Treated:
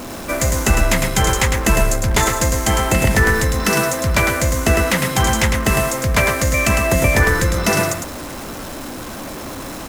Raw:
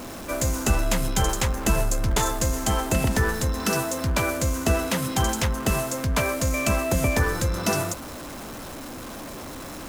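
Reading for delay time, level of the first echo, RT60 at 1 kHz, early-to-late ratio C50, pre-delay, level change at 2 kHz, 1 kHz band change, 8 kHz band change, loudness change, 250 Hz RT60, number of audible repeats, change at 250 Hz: 0.105 s, -5.5 dB, none, none, none, +11.0 dB, +7.5 dB, +7.0 dB, +8.0 dB, none, 1, +6.0 dB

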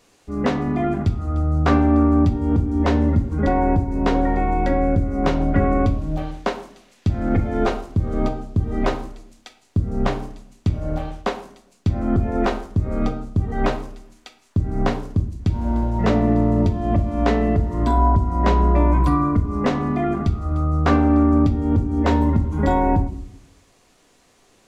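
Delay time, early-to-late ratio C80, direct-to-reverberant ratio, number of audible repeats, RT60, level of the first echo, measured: none, 15.5 dB, 6.0 dB, none, 0.65 s, none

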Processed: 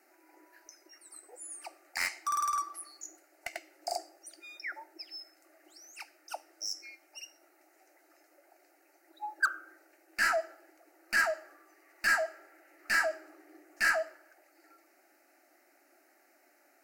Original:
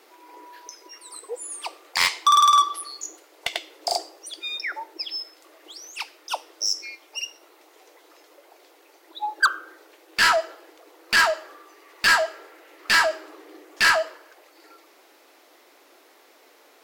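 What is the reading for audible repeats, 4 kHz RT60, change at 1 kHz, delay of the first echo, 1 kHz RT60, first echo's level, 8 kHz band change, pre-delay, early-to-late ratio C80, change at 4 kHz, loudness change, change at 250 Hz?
none, none, -13.5 dB, none, none, none, -10.5 dB, none, none, -17.0 dB, -10.5 dB, -9.5 dB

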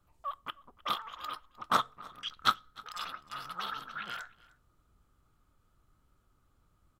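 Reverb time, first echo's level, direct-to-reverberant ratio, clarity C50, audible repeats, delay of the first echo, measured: none, -22.5 dB, none, none, 1, 0.306 s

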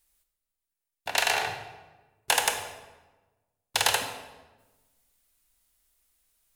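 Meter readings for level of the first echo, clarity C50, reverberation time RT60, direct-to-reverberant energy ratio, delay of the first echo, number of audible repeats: none, 7.5 dB, 1.2 s, 6.0 dB, none, none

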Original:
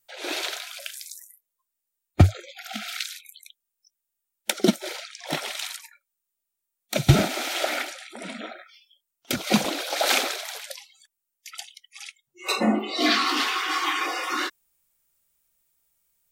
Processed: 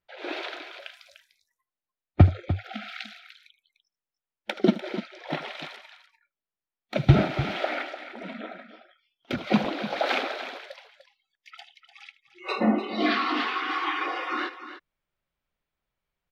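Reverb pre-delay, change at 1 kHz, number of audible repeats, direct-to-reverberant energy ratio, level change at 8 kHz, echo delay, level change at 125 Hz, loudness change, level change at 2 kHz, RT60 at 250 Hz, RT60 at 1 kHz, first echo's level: none, -1.5 dB, 2, none, under -20 dB, 77 ms, 0.0 dB, -2.0 dB, -3.0 dB, none, none, -17.0 dB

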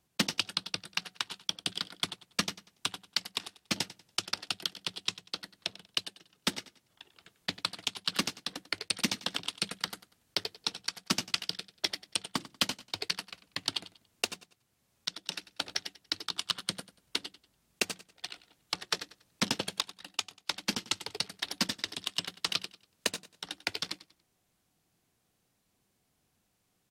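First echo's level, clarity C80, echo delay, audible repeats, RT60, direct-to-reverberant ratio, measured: -17.0 dB, none, 95 ms, 2, none, none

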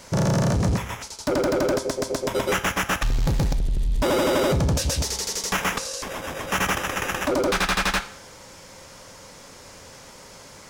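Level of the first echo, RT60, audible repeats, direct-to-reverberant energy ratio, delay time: none, 0.60 s, none, 9.0 dB, none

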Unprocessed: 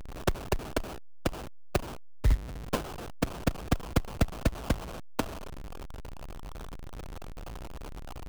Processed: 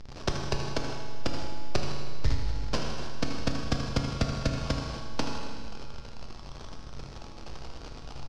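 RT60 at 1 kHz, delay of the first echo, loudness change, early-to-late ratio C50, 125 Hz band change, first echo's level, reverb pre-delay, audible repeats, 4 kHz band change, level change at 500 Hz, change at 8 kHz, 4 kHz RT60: 1.9 s, 79 ms, +0.5 dB, 2.0 dB, +0.5 dB, -10.5 dB, 7 ms, 2, +5.5 dB, -0.5 dB, +1.0 dB, 1.8 s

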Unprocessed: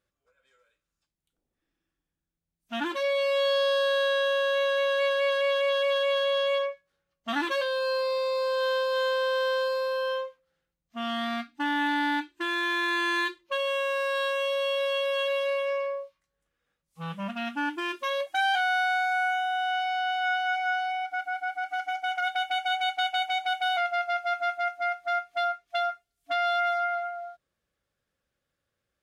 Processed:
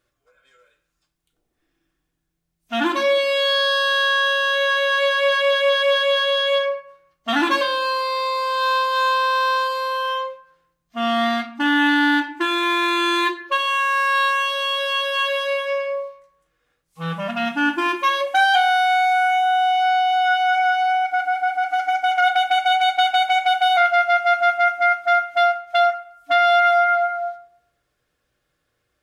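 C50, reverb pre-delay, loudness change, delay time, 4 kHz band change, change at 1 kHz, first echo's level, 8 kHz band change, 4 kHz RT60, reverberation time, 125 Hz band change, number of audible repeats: 11.5 dB, 3 ms, +8.5 dB, none, +9.5 dB, +11.0 dB, none, +9.5 dB, 0.40 s, 0.65 s, +9.0 dB, none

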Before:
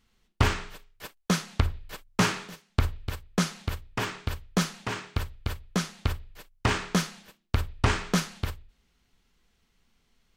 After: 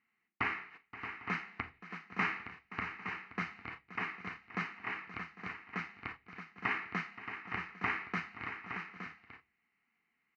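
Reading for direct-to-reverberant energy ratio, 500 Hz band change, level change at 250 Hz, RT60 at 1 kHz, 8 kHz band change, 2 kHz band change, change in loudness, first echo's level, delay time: none, -15.5 dB, -14.5 dB, none, under -30 dB, -2.5 dB, -10.0 dB, -18.5 dB, 40 ms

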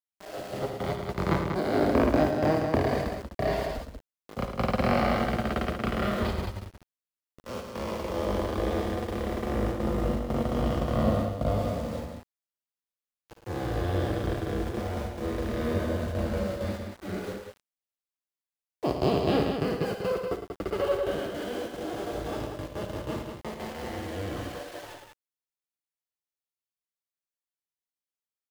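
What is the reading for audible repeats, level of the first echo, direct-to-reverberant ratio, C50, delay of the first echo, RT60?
3, -9.5 dB, none, none, 55 ms, none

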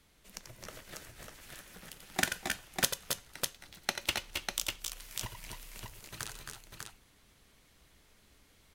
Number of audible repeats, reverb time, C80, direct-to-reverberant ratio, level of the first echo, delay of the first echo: 3, none, none, none, -8.0 dB, 87 ms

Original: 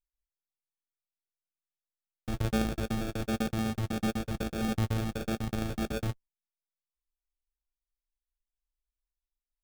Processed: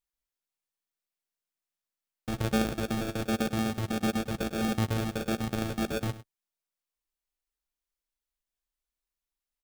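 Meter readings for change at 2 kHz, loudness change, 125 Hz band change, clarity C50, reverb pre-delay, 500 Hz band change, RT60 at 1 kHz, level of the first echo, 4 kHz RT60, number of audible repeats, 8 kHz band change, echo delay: +3.5 dB, +2.0 dB, 0.0 dB, none, none, +3.0 dB, none, -15.5 dB, none, 1, +3.5 dB, 0.102 s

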